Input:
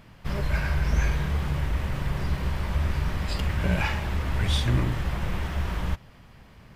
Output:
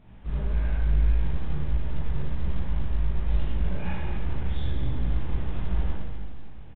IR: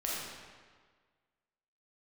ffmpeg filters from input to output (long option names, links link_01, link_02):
-filter_complex "[0:a]equalizer=frequency=2100:width=0.32:gain=-11,acompressor=threshold=-30dB:ratio=6,flanger=delay=15.5:depth=3.6:speed=1.6,aeval=exprs='0.0531*(cos(1*acos(clip(val(0)/0.0531,-1,1)))-cos(1*PI/2))+0.00133*(cos(3*acos(clip(val(0)/0.0531,-1,1)))-cos(3*PI/2))+0.00211*(cos(4*acos(clip(val(0)/0.0531,-1,1)))-cos(4*PI/2))+0.00376*(cos(6*acos(clip(val(0)/0.0531,-1,1)))-cos(6*PI/2))+0.000376*(cos(8*acos(clip(val(0)/0.0531,-1,1)))-cos(8*PI/2))':channel_layout=same,aecho=1:1:242|484|726|968:0.266|0.117|0.0515|0.0227[link_01];[1:a]atrim=start_sample=2205,asetrate=57330,aresample=44100[link_02];[link_01][link_02]afir=irnorm=-1:irlink=0,volume=5.5dB" -ar 8000 -c:a pcm_mulaw